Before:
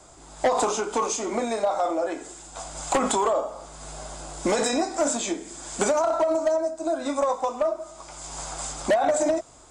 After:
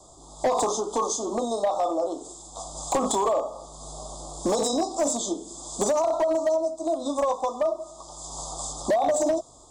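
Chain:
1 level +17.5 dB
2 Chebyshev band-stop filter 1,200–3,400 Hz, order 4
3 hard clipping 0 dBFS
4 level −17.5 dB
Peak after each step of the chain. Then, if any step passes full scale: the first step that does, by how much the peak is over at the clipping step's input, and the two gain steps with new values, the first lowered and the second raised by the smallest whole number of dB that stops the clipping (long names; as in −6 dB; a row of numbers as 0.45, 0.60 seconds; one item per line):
+2.0, +5.5, 0.0, −17.5 dBFS
step 1, 5.5 dB
step 1 +11.5 dB, step 4 −11.5 dB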